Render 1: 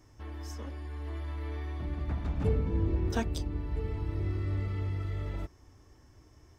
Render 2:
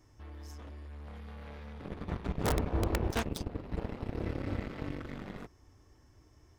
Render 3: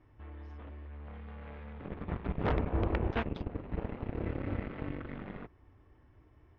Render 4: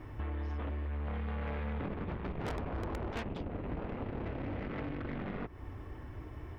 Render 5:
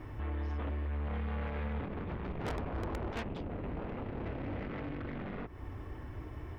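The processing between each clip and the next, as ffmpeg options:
ffmpeg -i in.wav -af "aeval=exprs='(mod(9.44*val(0)+1,2)-1)/9.44':channel_layout=same,aeval=exprs='0.106*(cos(1*acos(clip(val(0)/0.106,-1,1)))-cos(1*PI/2))+0.0299*(cos(7*acos(clip(val(0)/0.106,-1,1)))-cos(7*PI/2))':channel_layout=same,volume=-3dB" out.wav
ffmpeg -i in.wav -af "lowpass=frequency=2900:width=0.5412,lowpass=frequency=2900:width=1.3066" out.wav
ffmpeg -i in.wav -af "asoftclip=type=tanh:threshold=-35.5dB,acompressor=threshold=-51dB:ratio=12,volume=16dB" out.wav
ffmpeg -i in.wav -af "alimiter=level_in=10dB:limit=-24dB:level=0:latency=1:release=40,volume=-10dB,volume=1.5dB" out.wav

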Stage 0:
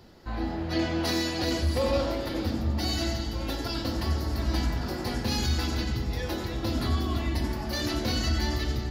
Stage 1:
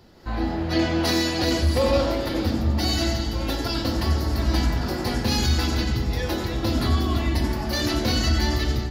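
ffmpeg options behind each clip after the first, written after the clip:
ffmpeg -i in.wav -af "dynaudnorm=framelen=130:gausssize=3:maxgain=5.5dB" out.wav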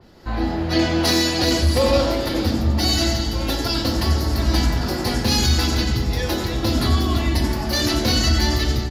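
ffmpeg -i in.wav -af "aresample=32000,aresample=44100,adynamicequalizer=threshold=0.0126:dfrequency=3500:dqfactor=0.7:tfrequency=3500:tqfactor=0.7:attack=5:release=100:ratio=0.375:range=2:mode=boostabove:tftype=highshelf,volume=3dB" out.wav

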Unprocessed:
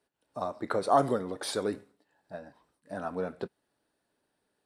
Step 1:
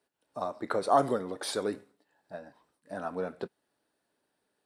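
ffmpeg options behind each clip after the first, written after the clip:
ffmpeg -i in.wav -af "lowshelf=frequency=110:gain=-8.5" out.wav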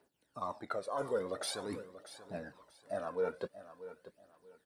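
ffmpeg -i in.wav -af "areverse,acompressor=threshold=-37dB:ratio=5,areverse,aphaser=in_gain=1:out_gain=1:delay=2.2:decay=0.64:speed=0.46:type=triangular,aecho=1:1:635|1270|1905:0.2|0.0539|0.0145,volume=1dB" out.wav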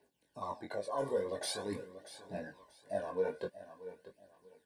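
ffmpeg -i in.wav -af "flanger=delay=19.5:depth=2.9:speed=2.4,asuperstop=centerf=1300:order=20:qfactor=4.7,volume=3.5dB" out.wav

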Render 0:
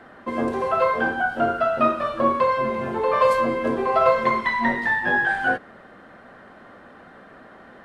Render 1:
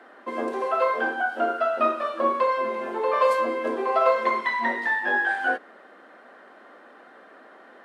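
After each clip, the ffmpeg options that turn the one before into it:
ffmpeg -i in.wav -af "highpass=frequency=280:width=0.5412,highpass=frequency=280:width=1.3066,volume=-2.5dB" out.wav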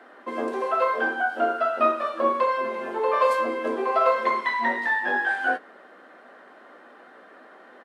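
ffmpeg -i in.wav -filter_complex "[0:a]asplit=2[link_01][link_02];[link_02]adelay=16,volume=-11dB[link_03];[link_01][link_03]amix=inputs=2:normalize=0" out.wav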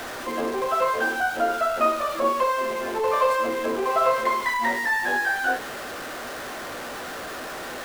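ffmpeg -i in.wav -af "aeval=exprs='val(0)+0.5*0.0398*sgn(val(0))':channel_layout=same,volume=-1.5dB" out.wav

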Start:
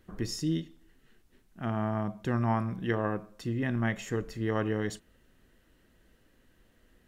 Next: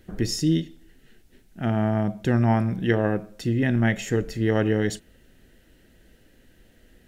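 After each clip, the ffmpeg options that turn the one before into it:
ffmpeg -i in.wav -af "equalizer=frequency=1100:width_type=o:width=0.39:gain=-13.5,volume=8.5dB" out.wav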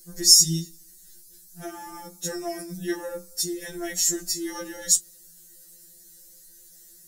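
ffmpeg -i in.wav -af "aexciter=amount=15.7:drive=7.5:freq=4500,afftfilt=real='re*2.83*eq(mod(b,8),0)':imag='im*2.83*eq(mod(b,8),0)':win_size=2048:overlap=0.75,volume=-6dB" out.wav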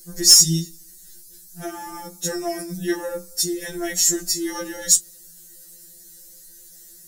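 ffmpeg -i in.wav -af "acontrast=52,volume=-1dB" out.wav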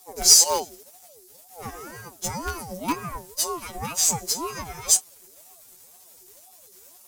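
ffmpeg -i in.wav -filter_complex "[0:a]asplit=2[link_01][link_02];[link_02]acrusher=bits=4:dc=4:mix=0:aa=0.000001,volume=-4dB[link_03];[link_01][link_03]amix=inputs=2:normalize=0,aeval=exprs='val(0)*sin(2*PI*560*n/s+560*0.35/2*sin(2*PI*2*n/s))':channel_layout=same,volume=-4dB" out.wav

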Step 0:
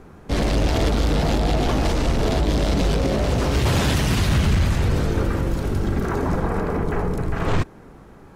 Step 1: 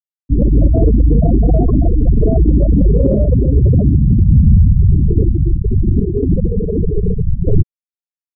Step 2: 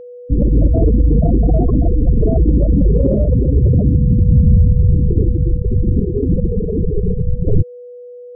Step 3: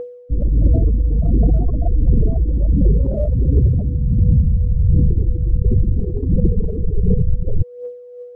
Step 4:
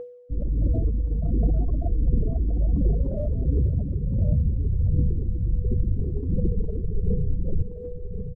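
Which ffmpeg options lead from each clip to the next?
ffmpeg -i in.wav -af "afftfilt=real='re*gte(hypot(re,im),0.355)':imag='im*gte(hypot(re,im),0.355)':win_size=1024:overlap=0.75,acontrast=30,volume=5.5dB" out.wav
ffmpeg -i in.wav -af "aeval=exprs='val(0)+0.0316*sin(2*PI*490*n/s)':channel_layout=same,volume=-1.5dB" out.wav
ffmpeg -i in.wav -af "areverse,acompressor=threshold=-18dB:ratio=6,areverse,aphaser=in_gain=1:out_gain=1:delay=1.8:decay=0.63:speed=1.4:type=triangular" out.wav
ffmpeg -i in.wav -af "bandreject=frequency=60:width_type=h:width=6,bandreject=frequency=120:width_type=h:width=6,bandreject=frequency=180:width_type=h:width=6,aecho=1:1:1074:0.376,volume=-8dB" out.wav

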